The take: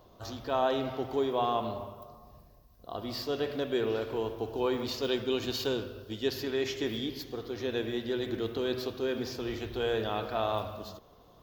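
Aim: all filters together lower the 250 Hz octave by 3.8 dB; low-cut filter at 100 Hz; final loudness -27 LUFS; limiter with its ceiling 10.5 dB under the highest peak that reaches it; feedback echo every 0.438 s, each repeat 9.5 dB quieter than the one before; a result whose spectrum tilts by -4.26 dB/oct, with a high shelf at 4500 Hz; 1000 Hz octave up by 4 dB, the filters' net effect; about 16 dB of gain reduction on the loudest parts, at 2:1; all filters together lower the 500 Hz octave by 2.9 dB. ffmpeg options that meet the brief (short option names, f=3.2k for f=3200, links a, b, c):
-af "highpass=100,equalizer=f=250:t=o:g=-3.5,equalizer=f=500:t=o:g=-4.5,equalizer=f=1k:t=o:g=7,highshelf=f=4.5k:g=5.5,acompressor=threshold=-53dB:ratio=2,alimiter=level_in=16dB:limit=-24dB:level=0:latency=1,volume=-16dB,aecho=1:1:438|876|1314|1752:0.335|0.111|0.0365|0.012,volume=23dB"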